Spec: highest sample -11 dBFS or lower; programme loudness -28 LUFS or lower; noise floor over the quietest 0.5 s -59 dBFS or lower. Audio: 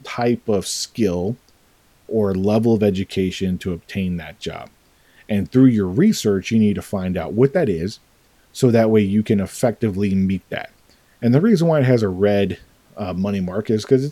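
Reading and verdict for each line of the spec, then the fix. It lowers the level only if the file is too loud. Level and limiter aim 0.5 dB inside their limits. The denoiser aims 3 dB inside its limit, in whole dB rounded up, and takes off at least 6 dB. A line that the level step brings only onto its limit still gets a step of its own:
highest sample -2.0 dBFS: fail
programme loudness -19.0 LUFS: fail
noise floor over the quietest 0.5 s -56 dBFS: fail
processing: trim -9.5 dB

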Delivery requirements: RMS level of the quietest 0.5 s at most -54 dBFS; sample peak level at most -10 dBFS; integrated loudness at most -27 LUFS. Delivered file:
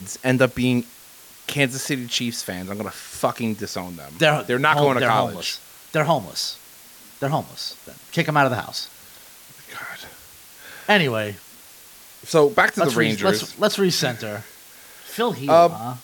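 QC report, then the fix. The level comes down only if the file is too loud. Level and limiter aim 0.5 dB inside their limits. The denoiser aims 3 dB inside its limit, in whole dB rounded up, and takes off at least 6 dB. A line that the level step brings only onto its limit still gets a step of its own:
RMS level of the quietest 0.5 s -46 dBFS: fail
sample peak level -3.0 dBFS: fail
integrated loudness -21.0 LUFS: fail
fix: noise reduction 6 dB, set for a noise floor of -46 dBFS; trim -6.5 dB; peak limiter -10.5 dBFS

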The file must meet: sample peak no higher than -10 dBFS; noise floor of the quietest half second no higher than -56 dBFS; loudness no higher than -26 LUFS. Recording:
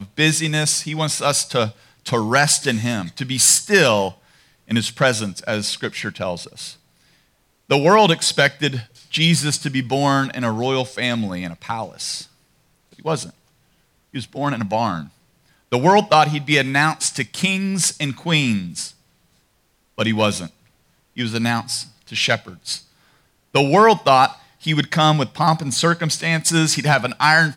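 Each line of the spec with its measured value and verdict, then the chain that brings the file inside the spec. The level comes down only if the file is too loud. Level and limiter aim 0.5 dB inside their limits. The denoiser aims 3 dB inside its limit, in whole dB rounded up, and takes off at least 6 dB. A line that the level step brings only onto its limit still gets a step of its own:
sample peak -3.0 dBFS: fail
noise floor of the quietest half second -63 dBFS: pass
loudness -18.5 LUFS: fail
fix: trim -8 dB

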